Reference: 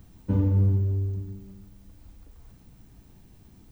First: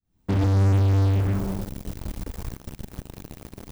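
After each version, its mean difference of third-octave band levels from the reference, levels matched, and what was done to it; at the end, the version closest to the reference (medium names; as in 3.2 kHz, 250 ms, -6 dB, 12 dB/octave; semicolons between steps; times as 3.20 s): 10.5 dB: fade-in on the opening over 1.05 s; in parallel at -9 dB: fuzz box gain 46 dB, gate -48 dBFS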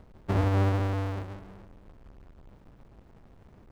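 7.0 dB: square wave that keeps the level; overdrive pedal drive 4 dB, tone 1 kHz, clips at -13.5 dBFS; trim -1.5 dB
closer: second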